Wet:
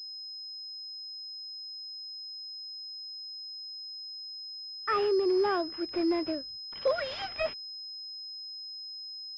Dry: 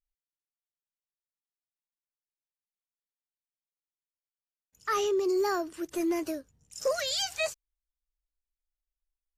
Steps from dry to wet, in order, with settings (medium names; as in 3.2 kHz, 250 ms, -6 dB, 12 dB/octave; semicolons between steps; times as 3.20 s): gate -57 dBFS, range -26 dB; class-D stage that switches slowly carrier 5.1 kHz; trim +1 dB